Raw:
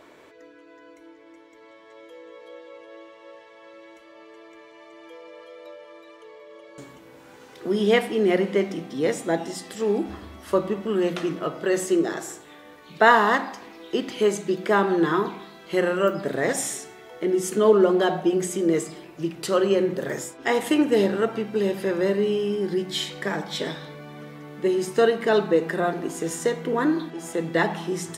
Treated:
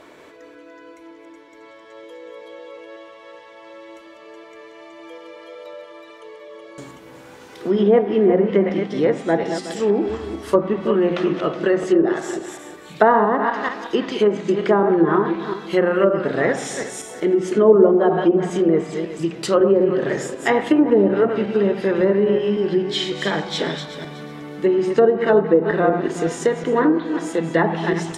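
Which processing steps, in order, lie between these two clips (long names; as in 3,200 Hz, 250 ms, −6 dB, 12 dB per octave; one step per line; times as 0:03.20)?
feedback delay that plays each chunk backwards 185 ms, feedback 44%, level −8 dB
treble cut that deepens with the level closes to 840 Hz, closed at −15 dBFS
level +5 dB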